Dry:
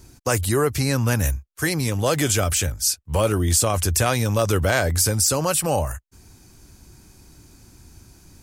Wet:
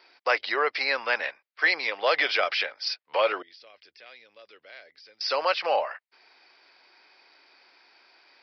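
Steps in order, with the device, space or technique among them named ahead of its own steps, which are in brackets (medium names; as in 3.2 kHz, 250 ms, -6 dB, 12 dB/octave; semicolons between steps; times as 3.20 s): 3.42–5.21 s: amplifier tone stack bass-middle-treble 10-0-1; musical greeting card (resampled via 11.025 kHz; high-pass 530 Hz 24 dB/octave; peaking EQ 2.1 kHz +8 dB 0.57 oct)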